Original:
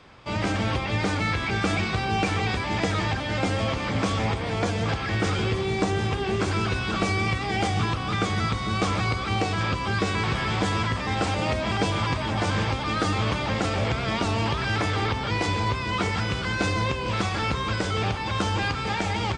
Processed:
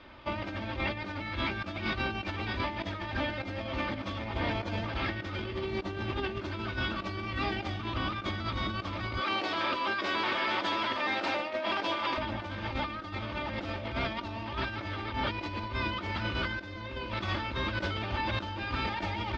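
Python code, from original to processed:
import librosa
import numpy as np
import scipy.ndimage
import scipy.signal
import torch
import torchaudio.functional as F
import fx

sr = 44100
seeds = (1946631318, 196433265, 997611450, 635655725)

y = fx.highpass(x, sr, hz=380.0, slope=12, at=(9.2, 12.18))
y = fx.env_flatten(y, sr, amount_pct=50, at=(16.58, 17.1), fade=0.02)
y = scipy.signal.sosfilt(scipy.signal.butter(4, 4400.0, 'lowpass', fs=sr, output='sos'), y)
y = y + 0.62 * np.pad(y, (int(3.3 * sr / 1000.0), 0))[:len(y)]
y = fx.over_compress(y, sr, threshold_db=-28.0, ratio=-0.5)
y = y * librosa.db_to_amplitude(-5.0)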